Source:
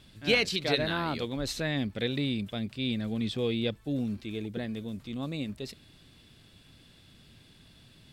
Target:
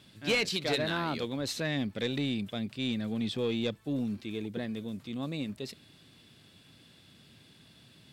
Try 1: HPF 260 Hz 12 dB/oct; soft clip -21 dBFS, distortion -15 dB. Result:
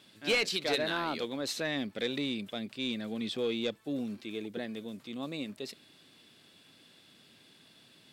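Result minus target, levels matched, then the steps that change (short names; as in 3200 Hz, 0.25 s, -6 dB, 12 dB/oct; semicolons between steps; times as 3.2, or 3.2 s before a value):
125 Hz band -8.0 dB
change: HPF 110 Hz 12 dB/oct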